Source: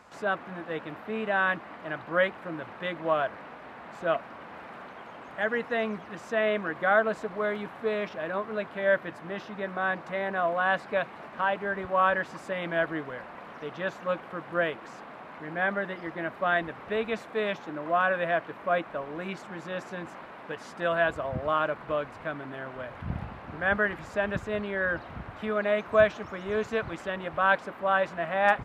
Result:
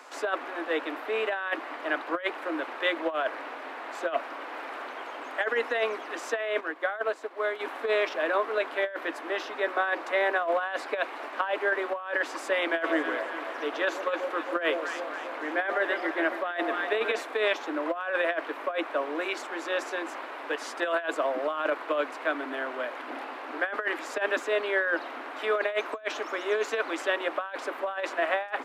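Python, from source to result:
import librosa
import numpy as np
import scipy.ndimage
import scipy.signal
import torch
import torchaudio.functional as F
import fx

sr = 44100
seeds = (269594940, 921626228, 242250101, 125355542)

y = fx.upward_expand(x, sr, threshold_db=-41.0, expansion=1.5, at=(6.59, 7.59), fade=0.02)
y = fx.echo_alternate(y, sr, ms=137, hz=910.0, feedback_pct=77, wet_db=-10, at=(12.8, 17.2), fade=0.02)
y = scipy.signal.sosfilt(scipy.signal.butter(16, 260.0, 'highpass', fs=sr, output='sos'), y)
y = fx.high_shelf(y, sr, hz=2000.0, db=5.0)
y = fx.over_compress(y, sr, threshold_db=-28.0, ratio=-0.5)
y = y * 10.0 ** (2.0 / 20.0)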